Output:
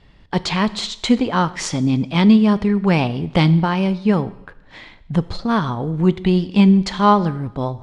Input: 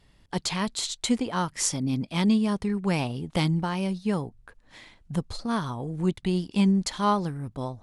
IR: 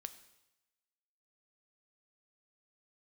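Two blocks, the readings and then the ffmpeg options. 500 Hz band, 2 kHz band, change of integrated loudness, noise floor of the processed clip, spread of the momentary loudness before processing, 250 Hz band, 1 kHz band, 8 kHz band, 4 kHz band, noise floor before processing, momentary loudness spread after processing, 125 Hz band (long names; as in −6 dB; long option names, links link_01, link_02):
+10.0 dB, +9.5 dB, +9.5 dB, −48 dBFS, 10 LU, +10.0 dB, +10.0 dB, can't be measured, +6.5 dB, −60 dBFS, 10 LU, +10.0 dB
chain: -filter_complex "[0:a]lowpass=3800,asplit=2[link_01][link_02];[1:a]atrim=start_sample=2205[link_03];[link_02][link_03]afir=irnorm=-1:irlink=0,volume=7dB[link_04];[link_01][link_04]amix=inputs=2:normalize=0,volume=2.5dB"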